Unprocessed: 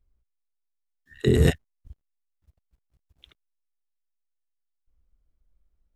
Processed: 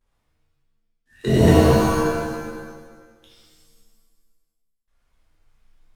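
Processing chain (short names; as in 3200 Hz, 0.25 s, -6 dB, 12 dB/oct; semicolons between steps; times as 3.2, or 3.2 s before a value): CVSD 64 kbps; in parallel at -5 dB: backlash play -30.5 dBFS; on the sum: vibrato 1.6 Hz 22 cents; shimmer reverb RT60 1.4 s, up +7 st, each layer -2 dB, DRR -8.5 dB; gain -7.5 dB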